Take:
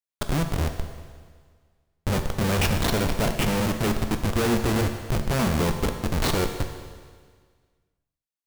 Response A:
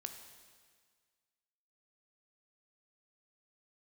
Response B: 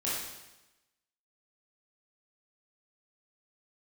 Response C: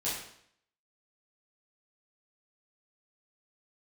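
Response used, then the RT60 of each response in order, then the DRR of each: A; 1.7, 1.0, 0.65 s; 5.5, -8.5, -10.0 dB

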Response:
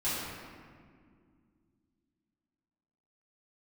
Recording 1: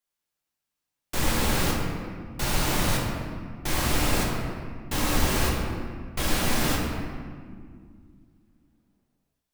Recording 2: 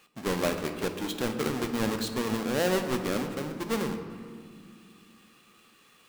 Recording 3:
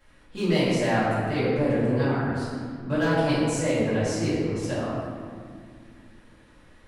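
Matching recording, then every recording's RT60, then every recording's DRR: 3; 2.1, 2.2, 2.1 s; -3.5, 5.5, -13.0 dB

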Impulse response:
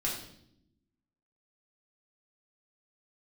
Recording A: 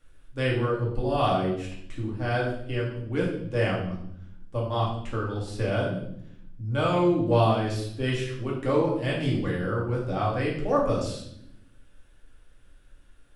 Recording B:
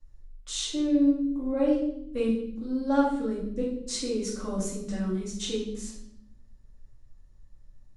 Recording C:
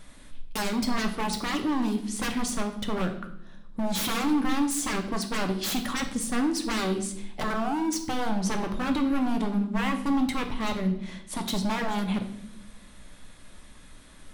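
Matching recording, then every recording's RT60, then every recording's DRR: A; 0.75 s, 0.75 s, not exponential; -5.0, -9.5, 4.5 dB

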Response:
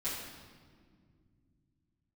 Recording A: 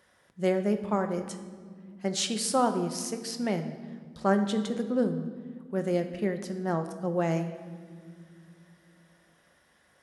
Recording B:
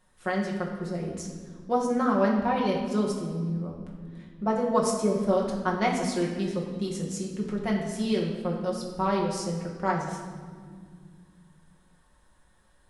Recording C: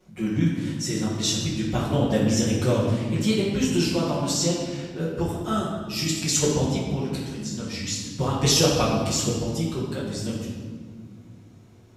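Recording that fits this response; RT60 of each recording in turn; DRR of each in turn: C; not exponential, not exponential, not exponential; 6.0, -2.5, -11.5 dB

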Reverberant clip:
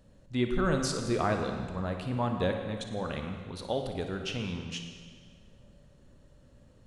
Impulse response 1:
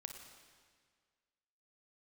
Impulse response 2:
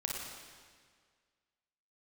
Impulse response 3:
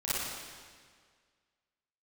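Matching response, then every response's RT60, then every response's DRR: 1; 1.8, 1.8, 1.8 s; 4.0, -2.0, -11.5 dB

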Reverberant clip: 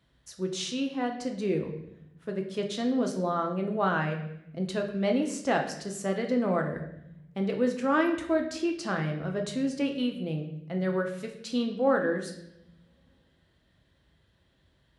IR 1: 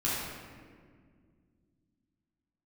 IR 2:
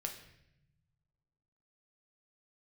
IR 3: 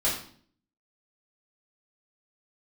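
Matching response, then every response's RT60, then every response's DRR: 2; 1.9, 0.80, 0.50 s; -8.5, 2.5, -7.5 dB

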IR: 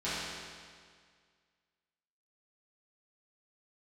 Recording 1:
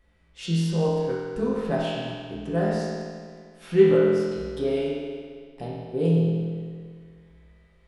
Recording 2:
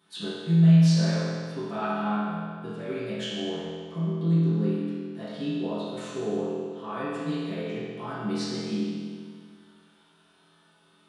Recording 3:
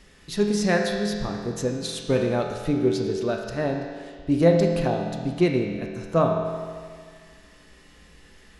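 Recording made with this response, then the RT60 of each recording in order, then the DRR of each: 2; 1.9, 1.9, 1.9 s; -7.5, -13.5, 1.0 dB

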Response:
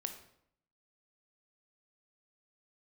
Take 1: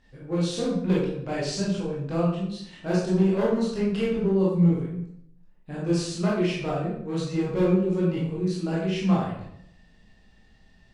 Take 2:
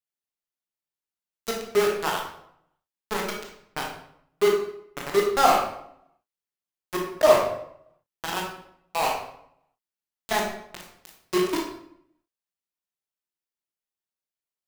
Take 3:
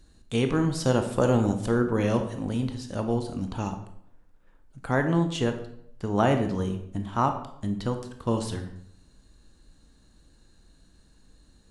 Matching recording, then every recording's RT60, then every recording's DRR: 3; 0.70, 0.70, 0.70 s; -7.5, -1.0, 6.0 dB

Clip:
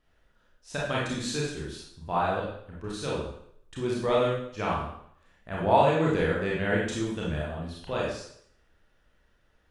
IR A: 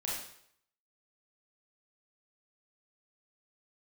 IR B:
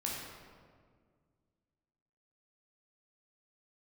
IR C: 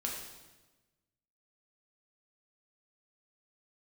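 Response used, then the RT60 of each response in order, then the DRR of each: A; 0.65, 1.8, 1.2 s; -5.5, -4.0, -2.0 dB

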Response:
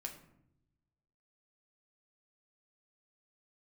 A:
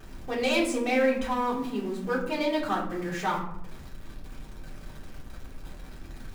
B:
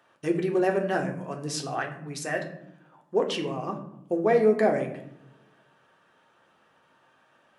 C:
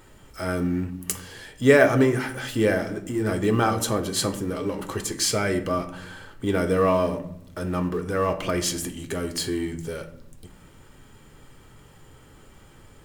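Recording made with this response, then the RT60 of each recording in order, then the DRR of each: B; 0.75, 0.80, 0.80 s; -6.5, 1.5, 6.5 dB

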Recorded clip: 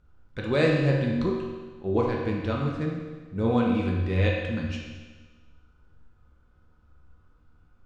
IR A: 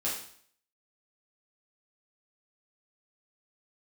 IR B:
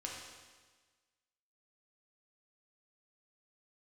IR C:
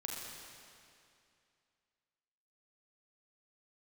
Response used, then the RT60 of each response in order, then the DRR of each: B; 0.55, 1.4, 2.5 s; -7.0, -2.5, -2.5 dB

